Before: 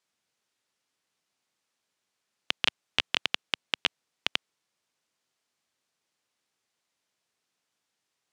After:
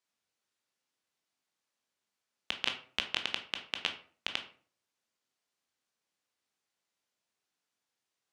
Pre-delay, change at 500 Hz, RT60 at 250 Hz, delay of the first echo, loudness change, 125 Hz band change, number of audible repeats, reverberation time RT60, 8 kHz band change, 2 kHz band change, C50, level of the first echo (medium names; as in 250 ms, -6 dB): 15 ms, -5.0 dB, 0.55 s, no echo, -5.5 dB, -6.5 dB, no echo, 0.45 s, -5.5 dB, -5.5 dB, 10.5 dB, no echo